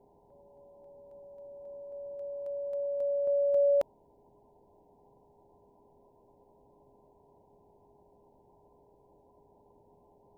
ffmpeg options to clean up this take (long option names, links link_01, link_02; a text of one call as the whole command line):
ffmpeg -i in.wav -af "bandreject=frequency=410:width=30,afwtdn=0.0028" out.wav